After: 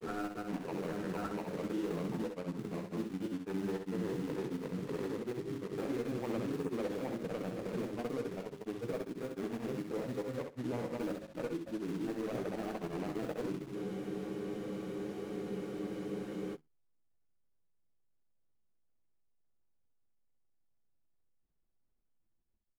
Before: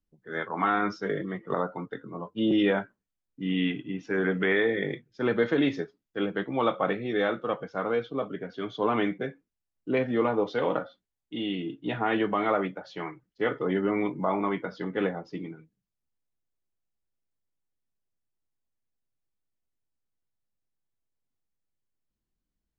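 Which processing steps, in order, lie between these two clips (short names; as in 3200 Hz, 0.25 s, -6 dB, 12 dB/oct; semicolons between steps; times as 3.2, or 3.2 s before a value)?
median filter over 41 samples; high shelf 3300 Hz -9.5 dB; notches 50/100/150/200/250/300/350/400 Hz; reverse; compressor 4:1, threshold -40 dBFS, peak gain reduction 15.5 dB; reverse; limiter -37.5 dBFS, peak gain reduction 8.5 dB; in parallel at -3 dB: companded quantiser 4-bit; on the sum: grains, spray 0.902 s; feedback echo 65 ms, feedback 16%, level -6 dB; spectral freeze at 13.77, 2.78 s; gain +3.5 dB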